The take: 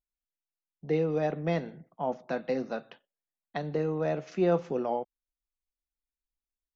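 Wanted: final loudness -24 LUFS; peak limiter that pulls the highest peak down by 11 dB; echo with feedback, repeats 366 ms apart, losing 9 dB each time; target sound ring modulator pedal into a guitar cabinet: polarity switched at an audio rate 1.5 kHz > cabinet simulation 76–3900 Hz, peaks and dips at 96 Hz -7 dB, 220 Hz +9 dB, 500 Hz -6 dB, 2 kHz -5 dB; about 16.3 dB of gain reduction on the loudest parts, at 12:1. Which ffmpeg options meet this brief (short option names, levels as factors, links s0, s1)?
-af "acompressor=threshold=0.0141:ratio=12,alimiter=level_in=3.35:limit=0.0631:level=0:latency=1,volume=0.299,aecho=1:1:366|732|1098|1464:0.355|0.124|0.0435|0.0152,aeval=exprs='val(0)*sgn(sin(2*PI*1500*n/s))':c=same,highpass=76,equalizer=f=96:t=q:w=4:g=-7,equalizer=f=220:t=q:w=4:g=9,equalizer=f=500:t=q:w=4:g=-6,equalizer=f=2000:t=q:w=4:g=-5,lowpass=f=3900:w=0.5412,lowpass=f=3900:w=1.3066,volume=12.6"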